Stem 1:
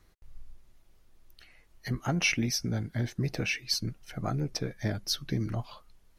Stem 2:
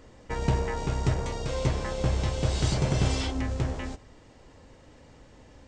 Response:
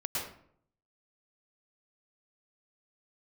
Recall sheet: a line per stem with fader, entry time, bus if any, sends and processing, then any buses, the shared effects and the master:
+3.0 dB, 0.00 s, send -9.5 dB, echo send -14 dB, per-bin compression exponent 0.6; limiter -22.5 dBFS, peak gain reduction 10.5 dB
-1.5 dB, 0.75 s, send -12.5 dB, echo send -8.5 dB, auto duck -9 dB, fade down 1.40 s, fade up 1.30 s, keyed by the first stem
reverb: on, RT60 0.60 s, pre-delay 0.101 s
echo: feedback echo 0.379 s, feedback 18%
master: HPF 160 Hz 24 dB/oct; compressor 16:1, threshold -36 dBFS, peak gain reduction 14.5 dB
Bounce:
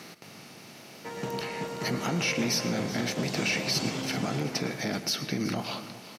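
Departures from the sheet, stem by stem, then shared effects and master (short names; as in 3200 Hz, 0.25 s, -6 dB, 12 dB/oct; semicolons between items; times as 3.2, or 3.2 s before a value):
stem 1: send -9.5 dB -> -16.5 dB; master: missing compressor 16:1, threshold -36 dBFS, peak gain reduction 14.5 dB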